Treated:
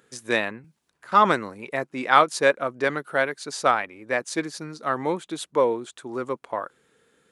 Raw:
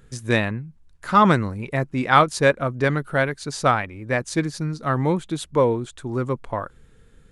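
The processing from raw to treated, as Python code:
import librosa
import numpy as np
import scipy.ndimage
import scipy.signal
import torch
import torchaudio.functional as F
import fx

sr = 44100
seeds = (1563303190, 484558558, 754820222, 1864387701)

y = scipy.signal.sosfilt(scipy.signal.butter(2, 340.0, 'highpass', fs=sr, output='sos'), x)
y = fx.band_squash(y, sr, depth_pct=70, at=(0.64, 1.12))
y = y * librosa.db_to_amplitude(-1.0)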